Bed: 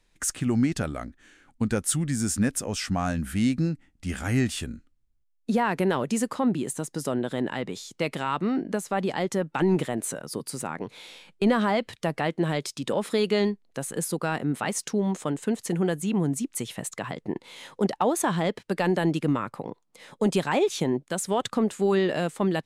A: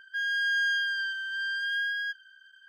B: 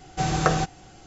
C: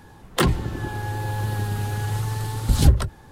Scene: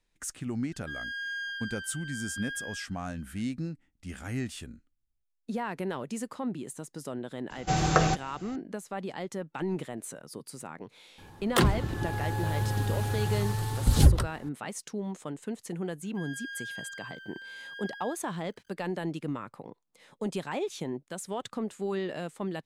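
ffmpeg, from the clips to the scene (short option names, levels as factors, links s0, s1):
-filter_complex "[1:a]asplit=2[s0][s1];[0:a]volume=0.335[s2];[s1]aeval=exprs='val(0)*gte(abs(val(0)),0.00266)':c=same[s3];[s0]atrim=end=2.68,asetpts=PTS-STARTPTS,volume=0.355,afade=t=in:d=0.004:c=hsin,afade=t=out:st=2.676:d=0.004:c=hsin,adelay=730[s4];[2:a]atrim=end=1.06,asetpts=PTS-STARTPTS,volume=0.841,afade=t=in:d=0.004:c=hsin,afade=t=out:st=1.056:d=0.004:c=hsin,adelay=7500[s5];[3:a]atrim=end=3.31,asetpts=PTS-STARTPTS,volume=0.668,afade=t=in:d=0.004:c=hsin,afade=t=out:st=3.306:d=0.004:c=hsin,adelay=11180[s6];[s3]atrim=end=2.68,asetpts=PTS-STARTPTS,volume=0.211,afade=t=in:d=0.004:c=hsin,afade=t=out:st=2.676:d=0.004:c=hsin,adelay=16030[s7];[s2][s4][s5][s6][s7]amix=inputs=5:normalize=0"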